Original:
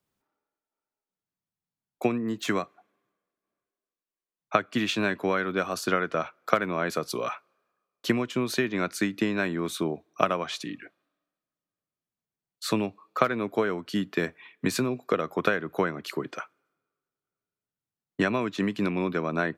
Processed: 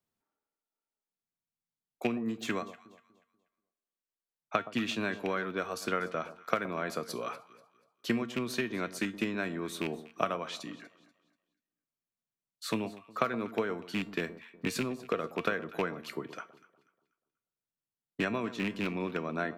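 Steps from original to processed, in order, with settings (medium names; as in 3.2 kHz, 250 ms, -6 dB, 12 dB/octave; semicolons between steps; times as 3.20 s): rattle on loud lows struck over -27 dBFS, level -16 dBFS; feedback comb 230 Hz, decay 0.31 s, harmonics all, mix 60%; echo whose repeats swap between lows and highs 121 ms, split 1.1 kHz, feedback 55%, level -13.5 dB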